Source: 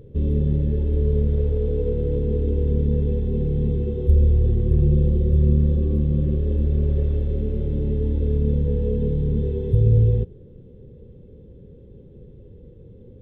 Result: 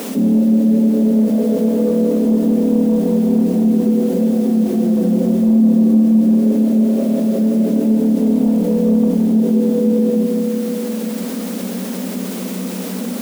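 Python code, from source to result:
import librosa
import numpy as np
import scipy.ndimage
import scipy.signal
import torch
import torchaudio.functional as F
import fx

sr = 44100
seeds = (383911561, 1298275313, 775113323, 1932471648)

p1 = fx.small_body(x, sr, hz=(230.0, 630.0), ring_ms=45, db=13)
p2 = fx.quant_dither(p1, sr, seeds[0], bits=6, dither='triangular')
p3 = p1 + (p2 * 10.0 ** (-9.0 / 20.0))
p4 = scipy.signal.sosfilt(scipy.signal.cheby1(6, 9, 180.0, 'highpass', fs=sr, output='sos'), p3)
p5 = 10.0 ** (-13.5 / 20.0) * np.tanh(p4 / 10.0 ** (-13.5 / 20.0))
p6 = p5 + fx.echo_single(p5, sr, ms=166, db=-7.0, dry=0)
p7 = fx.rev_spring(p6, sr, rt60_s=3.3, pass_ms=(45, 59), chirp_ms=55, drr_db=8.5)
p8 = fx.env_flatten(p7, sr, amount_pct=50)
y = p8 * 10.0 ** (6.0 / 20.0)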